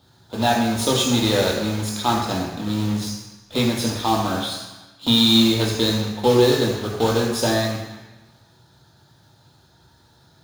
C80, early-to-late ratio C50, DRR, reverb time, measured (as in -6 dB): 5.0 dB, 3.0 dB, -2.0 dB, 1.1 s